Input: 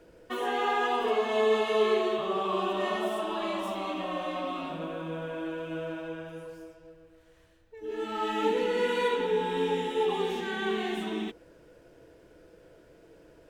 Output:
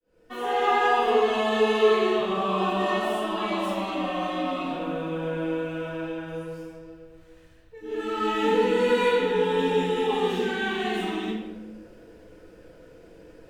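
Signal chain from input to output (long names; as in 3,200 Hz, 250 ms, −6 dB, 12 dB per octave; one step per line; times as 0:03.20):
fade in at the beginning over 0.63 s
rectangular room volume 420 cubic metres, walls mixed, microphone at 2 metres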